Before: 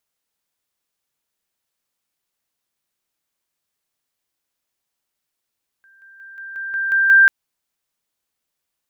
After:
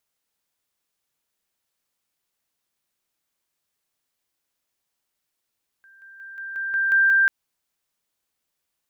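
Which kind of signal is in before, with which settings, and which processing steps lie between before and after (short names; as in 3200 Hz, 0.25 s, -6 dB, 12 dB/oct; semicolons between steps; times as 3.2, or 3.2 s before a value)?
level ladder 1580 Hz -49 dBFS, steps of 6 dB, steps 8, 0.18 s 0.00 s
limiter -14 dBFS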